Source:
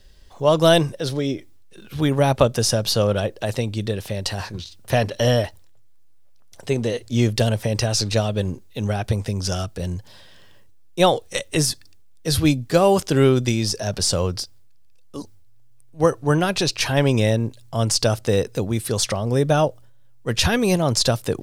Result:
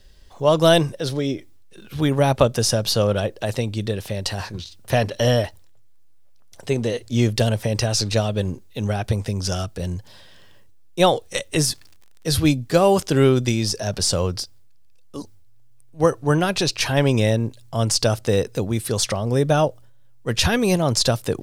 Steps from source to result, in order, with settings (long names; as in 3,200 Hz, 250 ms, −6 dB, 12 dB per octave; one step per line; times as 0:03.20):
0:11.67–0:12.29: surface crackle 130 per second → 35 per second −38 dBFS